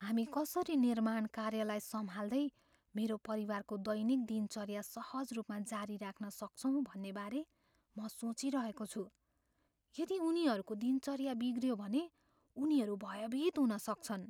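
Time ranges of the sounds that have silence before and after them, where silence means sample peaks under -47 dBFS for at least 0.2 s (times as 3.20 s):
2.95–7.43 s
7.97–9.05 s
9.95–12.06 s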